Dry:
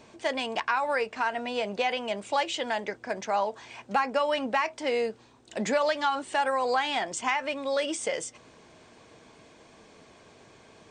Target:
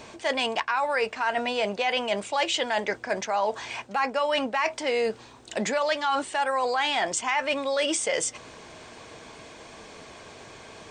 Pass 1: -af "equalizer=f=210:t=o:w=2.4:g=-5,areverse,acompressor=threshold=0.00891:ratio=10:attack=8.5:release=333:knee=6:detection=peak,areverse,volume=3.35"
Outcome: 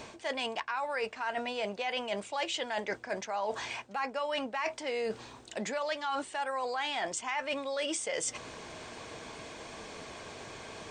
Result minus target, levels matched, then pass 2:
compression: peak gain reduction +8.5 dB
-af "equalizer=f=210:t=o:w=2.4:g=-5,areverse,acompressor=threshold=0.0266:ratio=10:attack=8.5:release=333:knee=6:detection=peak,areverse,volume=3.35"

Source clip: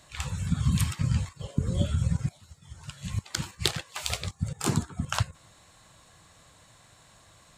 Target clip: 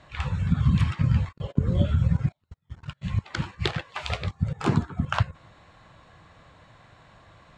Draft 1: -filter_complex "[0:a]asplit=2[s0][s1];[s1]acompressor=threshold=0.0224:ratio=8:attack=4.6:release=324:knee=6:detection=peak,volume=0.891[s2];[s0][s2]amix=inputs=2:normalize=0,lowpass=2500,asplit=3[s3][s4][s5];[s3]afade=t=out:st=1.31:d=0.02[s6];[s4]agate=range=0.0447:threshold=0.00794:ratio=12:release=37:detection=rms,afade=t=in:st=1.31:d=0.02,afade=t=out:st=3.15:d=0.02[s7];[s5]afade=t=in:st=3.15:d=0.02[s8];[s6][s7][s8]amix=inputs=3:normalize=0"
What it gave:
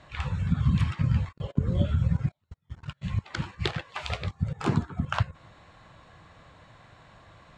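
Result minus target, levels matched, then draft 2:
compression: peak gain reduction +10.5 dB
-filter_complex "[0:a]asplit=2[s0][s1];[s1]acompressor=threshold=0.0891:ratio=8:attack=4.6:release=324:knee=6:detection=peak,volume=0.891[s2];[s0][s2]amix=inputs=2:normalize=0,lowpass=2500,asplit=3[s3][s4][s5];[s3]afade=t=out:st=1.31:d=0.02[s6];[s4]agate=range=0.0447:threshold=0.00794:ratio=12:release=37:detection=rms,afade=t=in:st=1.31:d=0.02,afade=t=out:st=3.15:d=0.02[s7];[s5]afade=t=in:st=3.15:d=0.02[s8];[s6][s7][s8]amix=inputs=3:normalize=0"

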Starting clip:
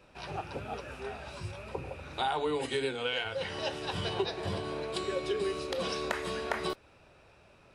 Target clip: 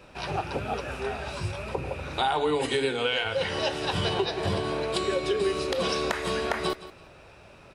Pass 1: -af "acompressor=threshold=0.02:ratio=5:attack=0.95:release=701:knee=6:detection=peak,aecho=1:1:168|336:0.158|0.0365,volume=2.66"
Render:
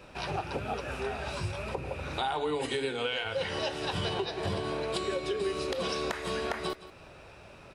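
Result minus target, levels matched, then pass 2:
compression: peak gain reduction +6.5 dB
-af "acompressor=threshold=0.0501:ratio=5:attack=0.95:release=701:knee=6:detection=peak,aecho=1:1:168|336:0.158|0.0365,volume=2.66"

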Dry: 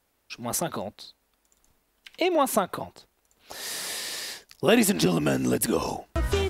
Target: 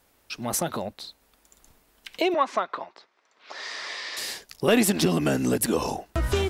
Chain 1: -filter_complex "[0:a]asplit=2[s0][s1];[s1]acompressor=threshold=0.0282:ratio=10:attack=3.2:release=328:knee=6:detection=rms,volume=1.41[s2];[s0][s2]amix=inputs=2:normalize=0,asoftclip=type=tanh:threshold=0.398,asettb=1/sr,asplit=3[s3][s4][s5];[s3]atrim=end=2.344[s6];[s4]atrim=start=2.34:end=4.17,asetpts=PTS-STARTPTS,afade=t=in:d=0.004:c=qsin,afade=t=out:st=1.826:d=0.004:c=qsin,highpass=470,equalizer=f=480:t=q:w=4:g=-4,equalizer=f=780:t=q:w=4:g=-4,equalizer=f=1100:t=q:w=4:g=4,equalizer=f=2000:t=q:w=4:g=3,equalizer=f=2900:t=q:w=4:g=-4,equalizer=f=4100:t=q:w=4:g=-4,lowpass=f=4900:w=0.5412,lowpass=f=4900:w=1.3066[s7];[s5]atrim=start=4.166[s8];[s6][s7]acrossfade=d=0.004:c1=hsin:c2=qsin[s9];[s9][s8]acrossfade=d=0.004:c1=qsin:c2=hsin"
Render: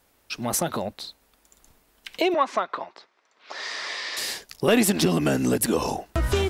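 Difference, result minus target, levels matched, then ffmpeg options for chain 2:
compression: peak gain reduction -8.5 dB
-filter_complex "[0:a]asplit=2[s0][s1];[s1]acompressor=threshold=0.00944:ratio=10:attack=3.2:release=328:knee=6:detection=rms,volume=1.41[s2];[s0][s2]amix=inputs=2:normalize=0,asoftclip=type=tanh:threshold=0.398,asettb=1/sr,asplit=3[s3][s4][s5];[s3]atrim=end=2.344[s6];[s4]atrim=start=2.34:end=4.17,asetpts=PTS-STARTPTS,afade=t=in:d=0.004:c=qsin,afade=t=out:st=1.826:d=0.004:c=qsin,highpass=470,equalizer=f=480:t=q:w=4:g=-4,equalizer=f=780:t=q:w=4:g=-4,equalizer=f=1100:t=q:w=4:g=4,equalizer=f=2000:t=q:w=4:g=3,equalizer=f=2900:t=q:w=4:g=-4,equalizer=f=4100:t=q:w=4:g=-4,lowpass=f=4900:w=0.5412,lowpass=f=4900:w=1.3066[s7];[s5]atrim=start=4.166[s8];[s6][s7]acrossfade=d=0.004:c1=hsin:c2=qsin[s9];[s9][s8]acrossfade=d=0.004:c1=qsin:c2=hsin"

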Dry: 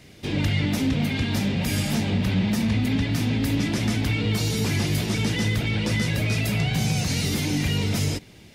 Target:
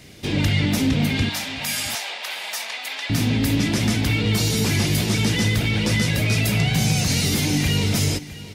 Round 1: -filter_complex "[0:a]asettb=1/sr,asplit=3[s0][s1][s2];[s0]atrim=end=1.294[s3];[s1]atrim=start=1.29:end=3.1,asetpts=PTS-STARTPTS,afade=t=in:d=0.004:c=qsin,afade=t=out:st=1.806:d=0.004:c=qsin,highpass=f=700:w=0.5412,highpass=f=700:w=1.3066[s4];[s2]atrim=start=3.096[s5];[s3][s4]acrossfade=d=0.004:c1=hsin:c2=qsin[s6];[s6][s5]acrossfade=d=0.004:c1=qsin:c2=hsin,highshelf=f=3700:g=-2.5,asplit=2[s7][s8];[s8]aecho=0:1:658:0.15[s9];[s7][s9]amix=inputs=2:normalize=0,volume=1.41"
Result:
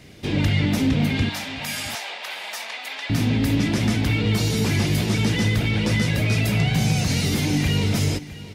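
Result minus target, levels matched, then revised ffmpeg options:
8 kHz band -4.5 dB
-filter_complex "[0:a]asettb=1/sr,asplit=3[s0][s1][s2];[s0]atrim=end=1.294[s3];[s1]atrim=start=1.29:end=3.1,asetpts=PTS-STARTPTS,afade=t=in:d=0.004:c=qsin,afade=t=out:st=1.806:d=0.004:c=qsin,highpass=f=700:w=0.5412,highpass=f=700:w=1.3066[s4];[s2]atrim=start=3.096[s5];[s3][s4]acrossfade=d=0.004:c1=hsin:c2=qsin[s6];[s6][s5]acrossfade=d=0.004:c1=qsin:c2=hsin,highshelf=f=3700:g=4.5,asplit=2[s7][s8];[s8]aecho=0:1:658:0.15[s9];[s7][s9]amix=inputs=2:normalize=0,volume=1.41"

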